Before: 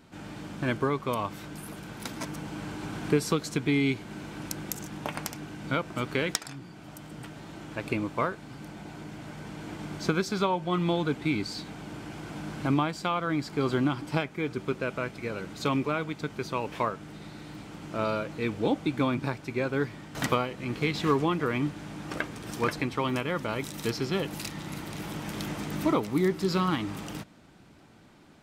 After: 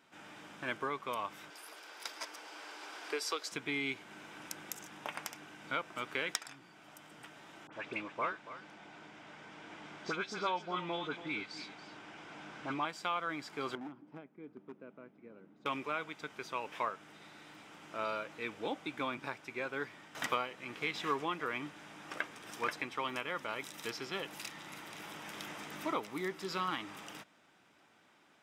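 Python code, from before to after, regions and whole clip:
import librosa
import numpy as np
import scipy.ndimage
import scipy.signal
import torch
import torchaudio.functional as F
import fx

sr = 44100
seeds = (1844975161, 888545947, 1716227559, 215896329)

y = fx.chain(x, sr, fx.highpass(hz=360.0, slope=24),
    fx.peak_eq(hz=4800.0, db=9.0, octaves=0.44), at=(1.5, 3.52))
y = fx.chain(y, sr, fx.lowpass(hz=6000.0, slope=12),
    fx.dispersion(late='highs', ms=59.0, hz=1900.0),
    fx.echo_single(ms=281, db=-13.5), at=(7.67, 12.85))
y = fx.chain(y, sr, fx.bandpass_q(hz=230.0, q=1.7),
    fx.clip_hard(threshold_db=-26.5), at=(13.75, 15.66))
y = fx.highpass(y, sr, hz=1400.0, slope=6)
y = fx.high_shelf(y, sr, hz=4400.0, db=-8.5)
y = fx.notch(y, sr, hz=4300.0, q=8.6)
y = y * 10.0 ** (-1.0 / 20.0)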